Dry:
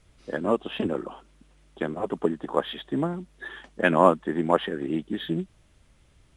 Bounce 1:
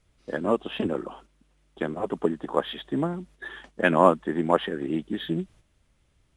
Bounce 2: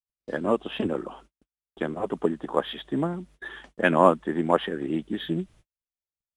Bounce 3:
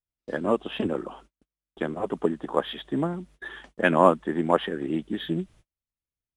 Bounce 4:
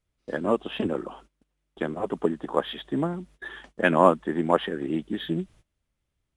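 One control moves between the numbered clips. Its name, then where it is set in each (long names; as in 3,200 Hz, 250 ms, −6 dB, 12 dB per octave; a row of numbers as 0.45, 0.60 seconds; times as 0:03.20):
noise gate, range: −7, −50, −38, −20 decibels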